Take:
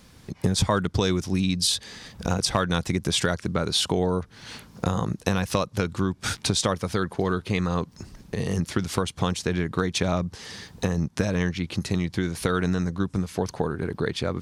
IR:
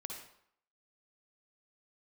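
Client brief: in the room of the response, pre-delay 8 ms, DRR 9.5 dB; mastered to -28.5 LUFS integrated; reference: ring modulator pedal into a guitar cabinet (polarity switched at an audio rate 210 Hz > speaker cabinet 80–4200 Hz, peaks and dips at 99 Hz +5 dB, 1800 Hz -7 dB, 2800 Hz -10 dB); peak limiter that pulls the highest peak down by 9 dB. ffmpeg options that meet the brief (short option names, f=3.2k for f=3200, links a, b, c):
-filter_complex "[0:a]alimiter=limit=-17dB:level=0:latency=1,asplit=2[a][b];[1:a]atrim=start_sample=2205,adelay=8[c];[b][c]afir=irnorm=-1:irlink=0,volume=-7.5dB[d];[a][d]amix=inputs=2:normalize=0,aeval=exprs='val(0)*sgn(sin(2*PI*210*n/s))':c=same,highpass=80,equalizer=f=99:t=q:w=4:g=5,equalizer=f=1.8k:t=q:w=4:g=-7,equalizer=f=2.8k:t=q:w=4:g=-10,lowpass=f=4.2k:w=0.5412,lowpass=f=4.2k:w=1.3066,volume=2.5dB"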